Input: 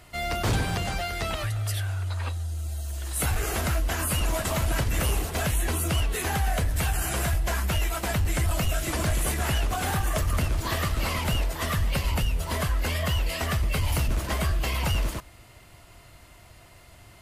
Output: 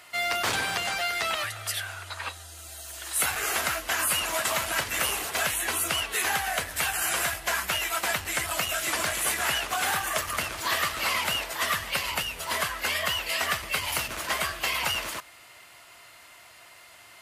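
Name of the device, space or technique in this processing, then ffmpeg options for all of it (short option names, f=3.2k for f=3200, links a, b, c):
filter by subtraction: -filter_complex "[0:a]asplit=2[a][b];[b]lowpass=1.6k,volume=-1[c];[a][c]amix=inputs=2:normalize=0,volume=3.5dB"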